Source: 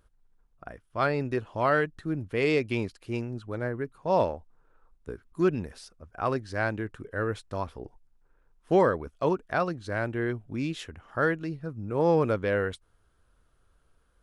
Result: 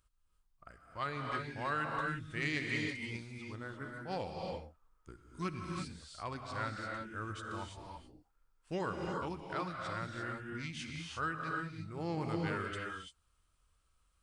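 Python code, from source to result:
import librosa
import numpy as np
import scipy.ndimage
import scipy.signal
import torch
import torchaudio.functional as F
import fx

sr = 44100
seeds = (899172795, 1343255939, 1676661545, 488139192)

y = fx.formant_shift(x, sr, semitones=-2)
y = fx.tone_stack(y, sr, knobs='5-5-5')
y = fx.rev_gated(y, sr, seeds[0], gate_ms=370, shape='rising', drr_db=0.5)
y = y * librosa.db_to_amplitude(3.0)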